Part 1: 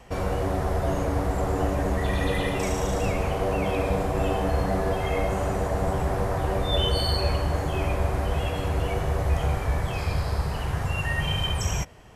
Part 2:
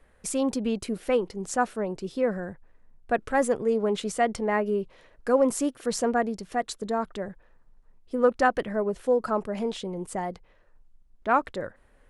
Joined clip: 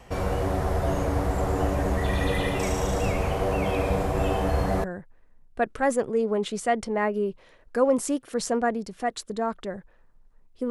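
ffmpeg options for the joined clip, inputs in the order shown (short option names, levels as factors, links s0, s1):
-filter_complex "[0:a]apad=whole_dur=10.7,atrim=end=10.7,atrim=end=4.842[s0];[1:a]atrim=start=2.358:end=8.22[s1];[s0][s1]acrossfade=d=0.004:c1=hsin:c2=hsin"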